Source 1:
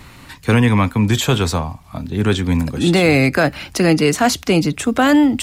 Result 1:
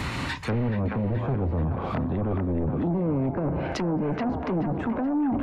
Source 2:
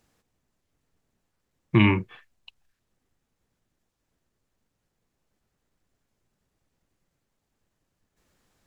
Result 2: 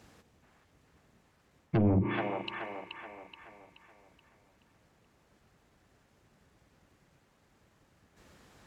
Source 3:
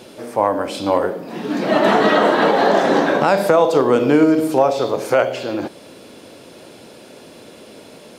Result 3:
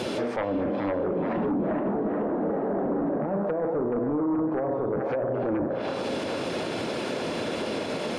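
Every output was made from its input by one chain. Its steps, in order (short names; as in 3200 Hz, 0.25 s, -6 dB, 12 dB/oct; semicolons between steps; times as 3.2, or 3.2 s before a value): HPF 48 Hz; high shelf 6000 Hz -8.5 dB; spring tank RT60 1.5 s, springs 35 ms, chirp 30 ms, DRR 17 dB; reverse; compressor 20:1, threshold -21 dBFS; reverse; treble ducked by the level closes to 380 Hz, closed at -22 dBFS; sine folder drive 8 dB, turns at -14.5 dBFS; on a send: band-limited delay 0.427 s, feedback 45%, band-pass 1300 Hz, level -3 dB; on the sum: limiter -21 dBFS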